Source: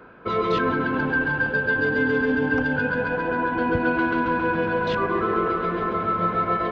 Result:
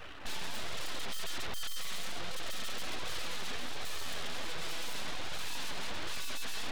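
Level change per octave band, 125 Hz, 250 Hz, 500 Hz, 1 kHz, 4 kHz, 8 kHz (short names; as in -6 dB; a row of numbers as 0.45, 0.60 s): -19.5 dB, -26.5 dB, -24.0 dB, -21.0 dB, +3.0 dB, n/a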